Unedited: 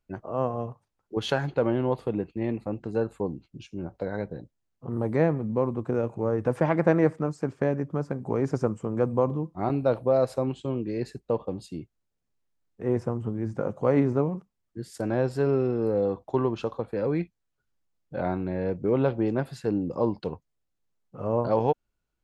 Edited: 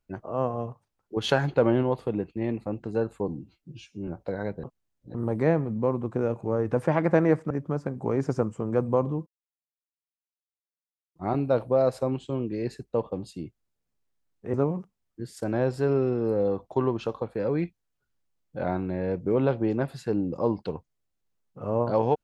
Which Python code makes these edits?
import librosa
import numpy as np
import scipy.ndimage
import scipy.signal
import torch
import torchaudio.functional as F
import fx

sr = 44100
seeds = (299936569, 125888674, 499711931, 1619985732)

y = fx.edit(x, sr, fx.clip_gain(start_s=1.24, length_s=0.59, db=3.0),
    fx.stretch_span(start_s=3.28, length_s=0.53, factor=1.5),
    fx.reverse_span(start_s=4.37, length_s=0.51),
    fx.cut(start_s=7.24, length_s=0.51),
    fx.insert_silence(at_s=9.51, length_s=1.89),
    fx.cut(start_s=12.89, length_s=1.22), tone=tone)